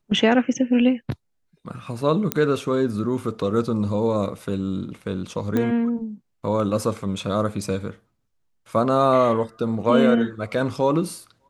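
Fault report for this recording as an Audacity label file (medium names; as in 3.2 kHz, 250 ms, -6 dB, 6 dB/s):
2.320000	2.320000	pop -4 dBFS
5.570000	5.570000	pop -12 dBFS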